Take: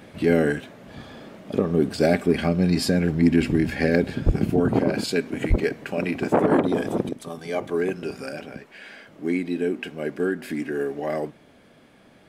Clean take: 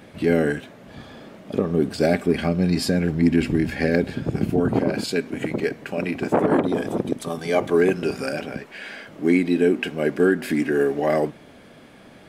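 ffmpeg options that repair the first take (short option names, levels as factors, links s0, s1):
-filter_complex "[0:a]asplit=3[s0][s1][s2];[s0]afade=t=out:st=4.25:d=0.02[s3];[s1]highpass=f=140:w=0.5412,highpass=f=140:w=1.3066,afade=t=in:st=4.25:d=0.02,afade=t=out:st=4.37:d=0.02[s4];[s2]afade=t=in:st=4.37:d=0.02[s5];[s3][s4][s5]amix=inputs=3:normalize=0,asplit=3[s6][s7][s8];[s6]afade=t=out:st=5.49:d=0.02[s9];[s7]highpass=f=140:w=0.5412,highpass=f=140:w=1.3066,afade=t=in:st=5.49:d=0.02,afade=t=out:st=5.61:d=0.02[s10];[s8]afade=t=in:st=5.61:d=0.02[s11];[s9][s10][s11]amix=inputs=3:normalize=0,asetnsamples=n=441:p=0,asendcmd='7.09 volume volume 6.5dB',volume=1"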